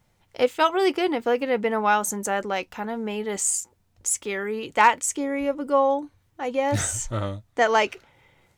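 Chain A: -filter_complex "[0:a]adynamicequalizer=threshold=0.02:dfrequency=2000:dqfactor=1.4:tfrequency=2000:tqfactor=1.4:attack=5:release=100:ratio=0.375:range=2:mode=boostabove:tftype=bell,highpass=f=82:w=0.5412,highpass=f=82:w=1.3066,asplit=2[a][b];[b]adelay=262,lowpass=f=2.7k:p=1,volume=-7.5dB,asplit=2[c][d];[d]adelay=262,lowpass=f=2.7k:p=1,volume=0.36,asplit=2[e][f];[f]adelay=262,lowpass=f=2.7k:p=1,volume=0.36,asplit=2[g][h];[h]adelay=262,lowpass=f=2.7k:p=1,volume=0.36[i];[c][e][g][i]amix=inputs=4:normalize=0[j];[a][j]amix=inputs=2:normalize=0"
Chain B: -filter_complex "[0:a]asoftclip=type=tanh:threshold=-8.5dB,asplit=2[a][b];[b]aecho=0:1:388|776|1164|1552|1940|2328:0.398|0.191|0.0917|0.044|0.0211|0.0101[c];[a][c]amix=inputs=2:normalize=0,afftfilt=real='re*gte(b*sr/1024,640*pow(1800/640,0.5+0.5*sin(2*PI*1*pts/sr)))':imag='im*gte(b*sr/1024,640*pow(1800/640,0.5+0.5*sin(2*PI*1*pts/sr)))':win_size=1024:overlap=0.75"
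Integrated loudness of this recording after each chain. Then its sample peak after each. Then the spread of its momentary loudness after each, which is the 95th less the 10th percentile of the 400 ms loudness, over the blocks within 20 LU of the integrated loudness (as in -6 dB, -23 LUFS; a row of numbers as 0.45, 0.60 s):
-23.0, -27.0 LUFS; -2.5, -8.5 dBFS; 10, 12 LU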